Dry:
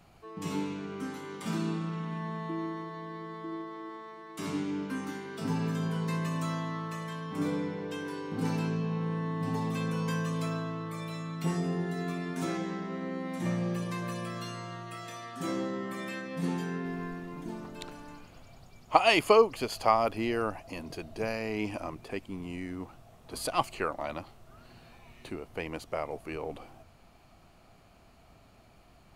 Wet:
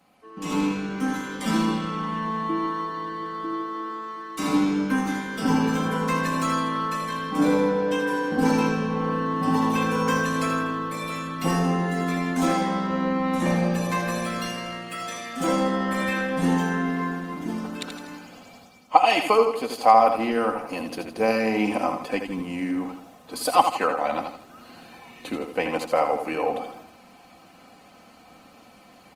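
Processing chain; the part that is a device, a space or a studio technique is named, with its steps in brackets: comb 3.9 ms, depth 63%; feedback delay 81 ms, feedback 44%, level -7 dB; dynamic bell 770 Hz, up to +6 dB, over -46 dBFS, Q 1.6; high-pass 74 Hz 6 dB/octave; video call (high-pass 140 Hz 12 dB/octave; level rider gain up to 9 dB; trim -1 dB; Opus 24 kbps 48 kHz)

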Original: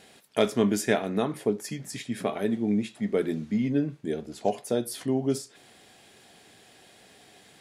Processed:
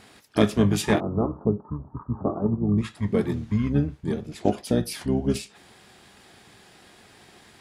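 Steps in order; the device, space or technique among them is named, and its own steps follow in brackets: octave pedal (harmony voices -12 st 0 dB); 1.00–2.78 s: steep low-pass 1.3 kHz 72 dB/octave

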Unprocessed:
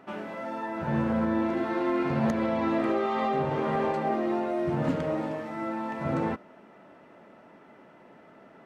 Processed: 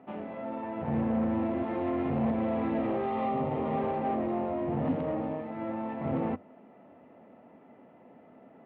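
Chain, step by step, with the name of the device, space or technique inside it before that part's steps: guitar amplifier (valve stage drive 27 dB, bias 0.7; tone controls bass +4 dB, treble -10 dB; cabinet simulation 79–3500 Hz, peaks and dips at 91 Hz +7 dB, 250 Hz +8 dB, 490 Hz +6 dB, 740 Hz +7 dB, 1.5 kHz -7 dB); 3.12–3.78 s: band-stop 1.6 kHz, Q 8.8; trim -2.5 dB

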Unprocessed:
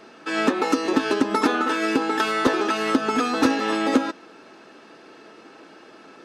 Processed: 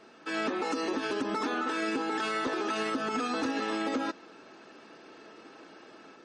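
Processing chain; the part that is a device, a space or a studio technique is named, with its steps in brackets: low-bitrate web radio (level rider gain up to 3.5 dB; peak limiter -15 dBFS, peak gain reduction 10 dB; trim -7.5 dB; MP3 40 kbps 48 kHz)

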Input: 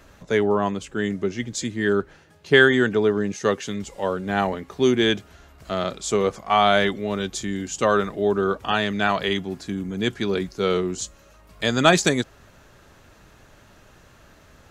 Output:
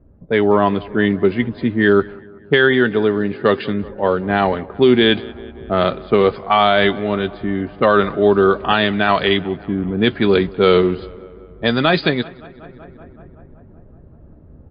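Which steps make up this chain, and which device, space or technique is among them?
doubling 13 ms -13.5 dB; level-controlled noise filter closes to 300 Hz, open at -16.5 dBFS; filtered feedback delay 189 ms, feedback 72%, low-pass 2.7 kHz, level -22.5 dB; low-bitrate web radio (level rider gain up to 7 dB; peak limiter -6 dBFS, peak gain reduction 5 dB; trim +4 dB; MP3 40 kbps 11.025 kHz)

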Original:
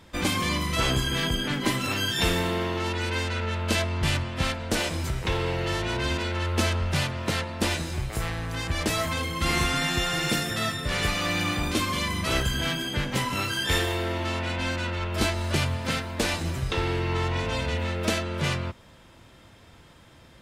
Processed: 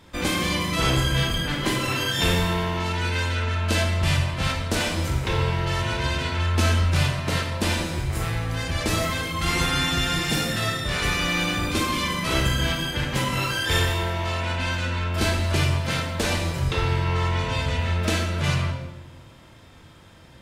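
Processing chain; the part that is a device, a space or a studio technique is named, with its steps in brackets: bathroom (reverberation RT60 1.0 s, pre-delay 21 ms, DRR 1 dB)

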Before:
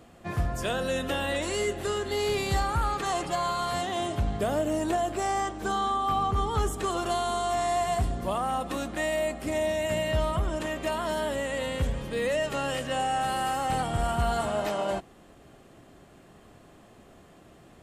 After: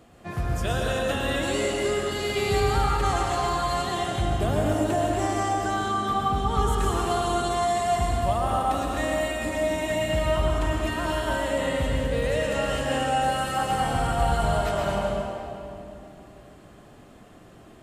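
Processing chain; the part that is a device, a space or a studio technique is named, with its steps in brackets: stairwell (reverberation RT60 2.8 s, pre-delay 104 ms, DRR -2.5 dB); trim -1 dB

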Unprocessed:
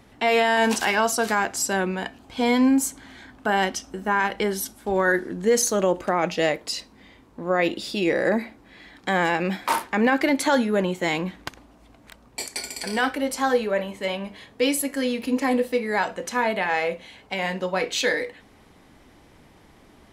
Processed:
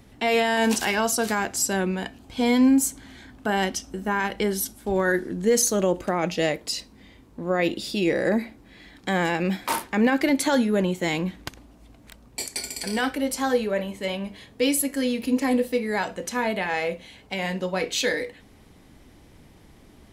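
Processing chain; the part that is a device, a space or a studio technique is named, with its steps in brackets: smiley-face EQ (bass shelf 180 Hz +5 dB; peaking EQ 1.1 kHz -4.5 dB 2 oct; treble shelf 9.7 kHz +4.5 dB)

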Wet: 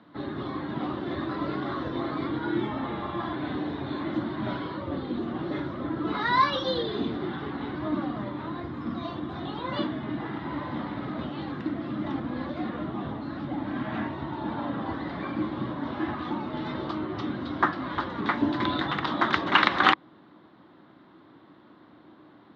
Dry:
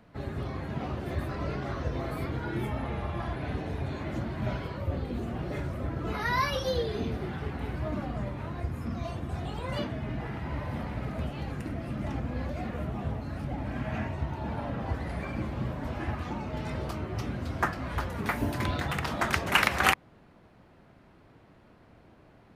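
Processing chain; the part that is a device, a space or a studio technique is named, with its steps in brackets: kitchen radio (cabinet simulation 190–3900 Hz, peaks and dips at 310 Hz +9 dB, 460 Hz -5 dB, 660 Hz -4 dB, 1.1 kHz +5 dB, 2.5 kHz -9 dB, 3.7 kHz +9 dB); trim +3.5 dB

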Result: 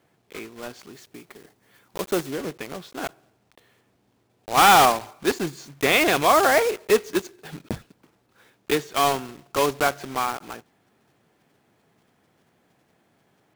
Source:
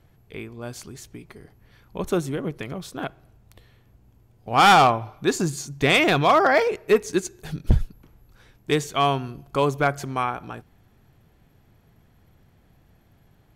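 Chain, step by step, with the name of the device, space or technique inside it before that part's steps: early digital voice recorder (band-pass 250–3700 Hz; block-companded coder 3-bit); 0.93–2.31 s: treble shelf 6.9 kHz +6 dB

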